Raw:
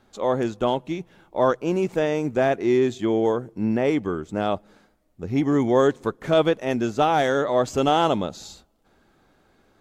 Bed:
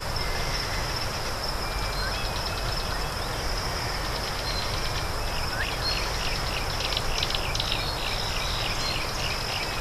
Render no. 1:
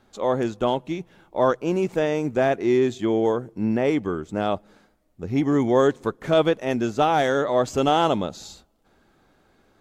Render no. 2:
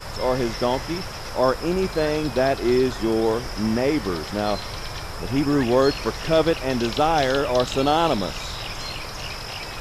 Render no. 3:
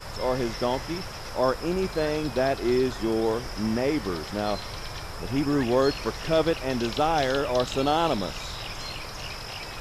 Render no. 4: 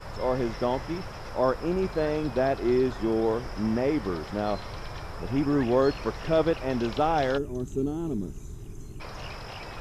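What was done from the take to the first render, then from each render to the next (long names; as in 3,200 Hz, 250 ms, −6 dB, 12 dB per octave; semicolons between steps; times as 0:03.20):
no processing that can be heard
mix in bed −3.5 dB
level −4 dB
0:07.38–0:09.00: gain on a spectral selection 450–5,900 Hz −21 dB; high-shelf EQ 2,900 Hz −11.5 dB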